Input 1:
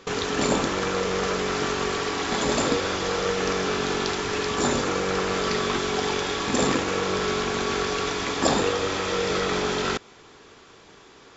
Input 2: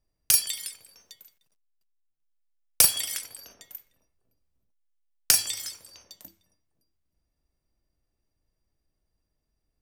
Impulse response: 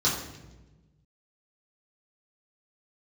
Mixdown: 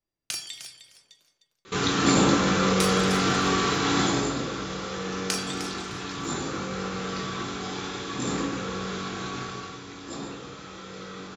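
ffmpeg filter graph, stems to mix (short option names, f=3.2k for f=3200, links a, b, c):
-filter_complex "[0:a]lowshelf=f=60:g=-10,adelay=1650,volume=-2.5dB,afade=t=out:st=3.96:d=0.29:silence=0.316228,afade=t=out:st=9.28:d=0.48:silence=0.398107,asplit=2[a][b];[b]volume=-8.5dB[c];[1:a]acrossover=split=200 7500:gain=0.2 1 0.0794[d][e][f];[d][e][f]amix=inputs=3:normalize=0,volume=-4.5dB,asplit=3[g][h][i];[h]volume=-19dB[j];[i]volume=-11.5dB[k];[2:a]atrim=start_sample=2205[l];[c][j]amix=inputs=2:normalize=0[m];[m][l]afir=irnorm=-1:irlink=0[n];[k]aecho=0:1:306|612|918:1|0.15|0.0225[o];[a][g][n][o]amix=inputs=4:normalize=0,equalizer=f=130:w=7.5:g=10"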